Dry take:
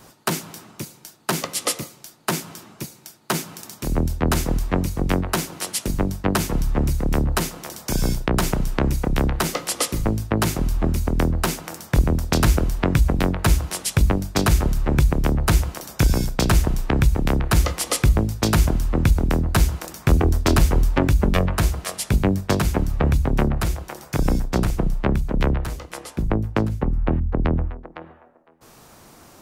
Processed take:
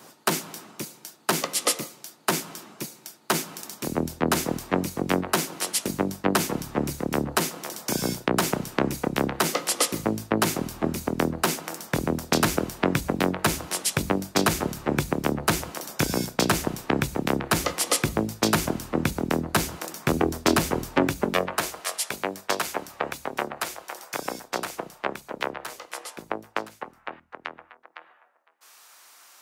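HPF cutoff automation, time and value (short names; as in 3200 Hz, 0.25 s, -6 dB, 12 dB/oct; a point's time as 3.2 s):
20.97 s 210 Hz
21.92 s 610 Hz
26.33 s 610 Hz
27.32 s 1300 Hz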